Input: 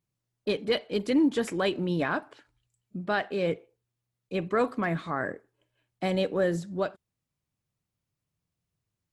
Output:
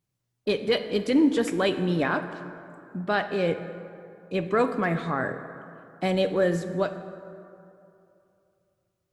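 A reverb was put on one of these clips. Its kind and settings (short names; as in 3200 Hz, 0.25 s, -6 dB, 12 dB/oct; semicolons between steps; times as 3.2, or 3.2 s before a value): plate-style reverb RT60 2.7 s, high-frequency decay 0.45×, DRR 9 dB; gain +2.5 dB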